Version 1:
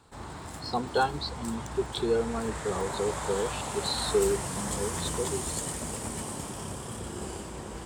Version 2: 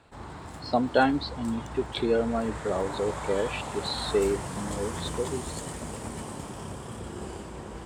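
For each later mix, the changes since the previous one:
speech: remove fixed phaser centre 410 Hz, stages 8; master: add high shelf 4600 Hz -9 dB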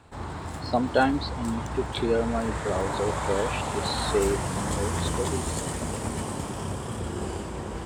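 background +5.5 dB; master: add bell 89 Hz +4.5 dB 0.37 oct

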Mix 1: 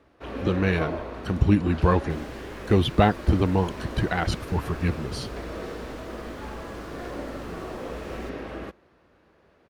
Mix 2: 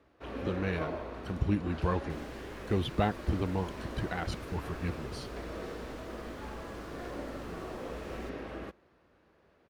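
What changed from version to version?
speech -10.0 dB; first sound -5.5 dB; second sound -5.0 dB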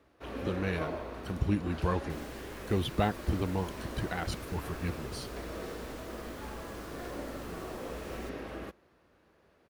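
master: add high shelf 8000 Hz +12 dB

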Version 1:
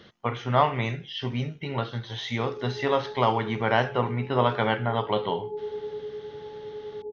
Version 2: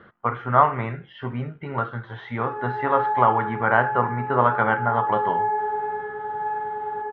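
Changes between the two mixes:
background: remove steep low-pass 640 Hz 48 dB/oct; master: add synth low-pass 1400 Hz, resonance Q 3.1

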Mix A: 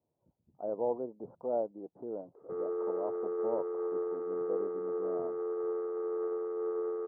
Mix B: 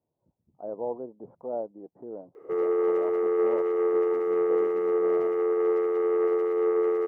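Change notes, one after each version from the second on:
background +10.0 dB; master: remove Chebyshev low-pass 1500 Hz, order 4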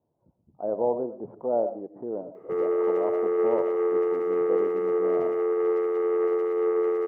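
speech +5.5 dB; reverb: on, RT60 0.35 s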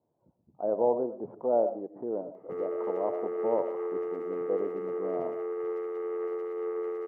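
background -8.5 dB; master: add low shelf 100 Hz -9.5 dB

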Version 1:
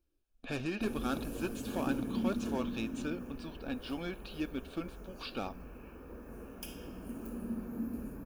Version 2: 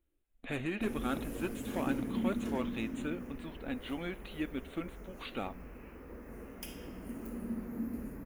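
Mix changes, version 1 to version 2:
speech: add Butterworth band-stop 5200 Hz, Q 1.7; master: remove Butterworth band-stop 2000 Hz, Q 4.7

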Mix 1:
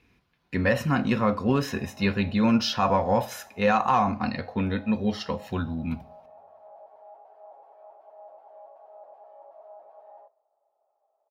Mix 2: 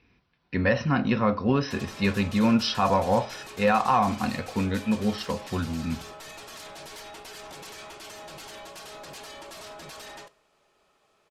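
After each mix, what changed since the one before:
speech: add brick-wall FIR low-pass 6100 Hz; background: remove Butterworth band-pass 700 Hz, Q 2.7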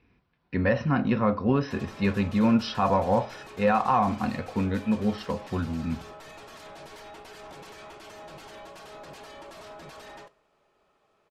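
master: add high shelf 3000 Hz -11 dB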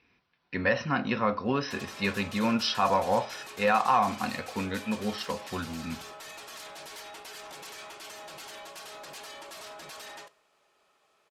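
master: add tilt +3 dB/oct

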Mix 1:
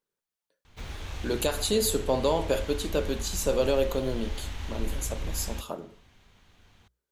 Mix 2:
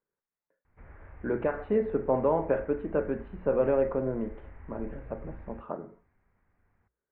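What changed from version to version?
background -11.5 dB; master: add steep low-pass 2100 Hz 48 dB/oct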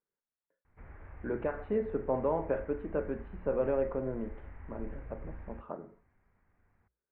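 speech -5.0 dB

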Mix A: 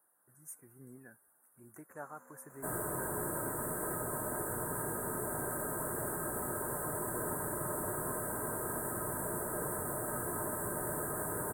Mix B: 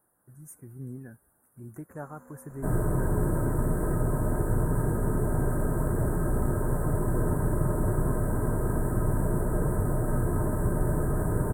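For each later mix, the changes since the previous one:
second sound: add high shelf 8000 Hz -9.5 dB; master: remove HPF 1000 Hz 6 dB/oct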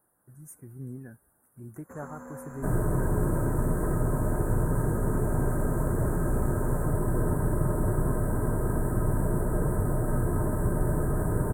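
first sound +10.5 dB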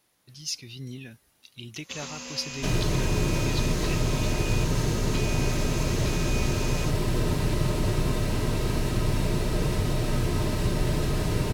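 master: remove Chebyshev band-stop 1600–8300 Hz, order 4

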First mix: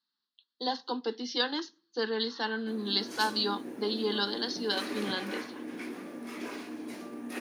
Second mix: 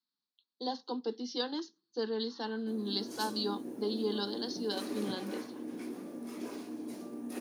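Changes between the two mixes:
speech: send -8.5 dB; master: add bell 2000 Hz -12 dB 2 oct

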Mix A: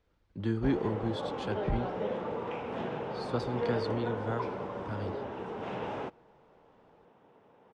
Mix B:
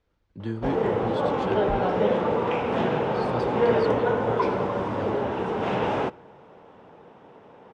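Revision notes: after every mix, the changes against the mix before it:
background +11.0 dB; reverb: on, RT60 0.75 s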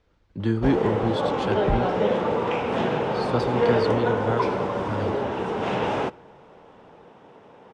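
speech +7.5 dB; background: add high shelf 4100 Hz +7 dB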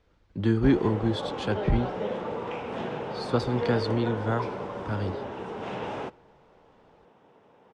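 background -9.0 dB

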